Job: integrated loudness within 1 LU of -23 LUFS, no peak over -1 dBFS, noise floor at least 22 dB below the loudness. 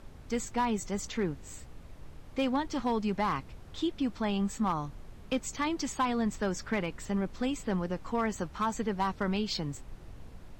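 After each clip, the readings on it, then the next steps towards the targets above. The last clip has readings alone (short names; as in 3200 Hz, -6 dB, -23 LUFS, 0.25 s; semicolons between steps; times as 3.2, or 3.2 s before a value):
clipped 0.6%; flat tops at -22.5 dBFS; noise floor -49 dBFS; noise floor target -55 dBFS; loudness -32.5 LUFS; peak -22.5 dBFS; loudness target -23.0 LUFS
-> clip repair -22.5 dBFS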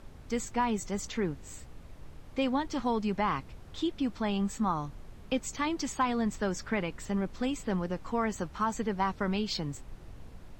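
clipped 0.0%; noise floor -49 dBFS; noise floor target -55 dBFS
-> noise print and reduce 6 dB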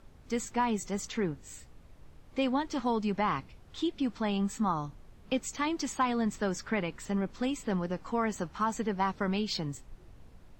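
noise floor -55 dBFS; loudness -32.5 LUFS; peak -17.0 dBFS; loudness target -23.0 LUFS
-> gain +9.5 dB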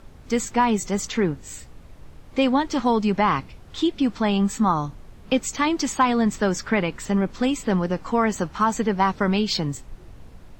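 loudness -23.0 LUFS; peak -7.5 dBFS; noise floor -46 dBFS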